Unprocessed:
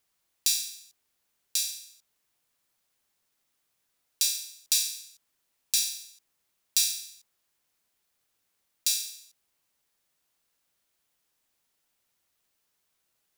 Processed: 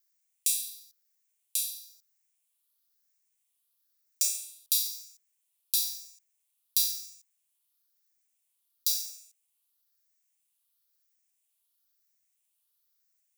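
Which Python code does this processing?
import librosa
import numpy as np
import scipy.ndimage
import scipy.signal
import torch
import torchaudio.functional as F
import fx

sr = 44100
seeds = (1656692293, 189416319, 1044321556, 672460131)

y = fx.spec_ripple(x, sr, per_octave=0.57, drift_hz=1.0, depth_db=8)
y = fx.tilt_eq(y, sr, slope=4.5)
y = y * 10.0 ** (-16.0 / 20.0)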